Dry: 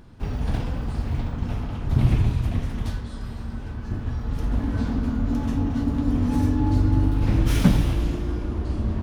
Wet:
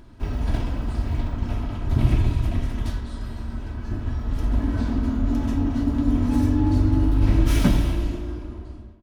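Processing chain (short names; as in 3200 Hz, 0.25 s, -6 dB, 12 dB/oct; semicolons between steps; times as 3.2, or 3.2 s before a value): ending faded out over 1.36 s; comb 3.1 ms, depth 41%; on a send: reverb RT60 1.6 s, pre-delay 96 ms, DRR 15 dB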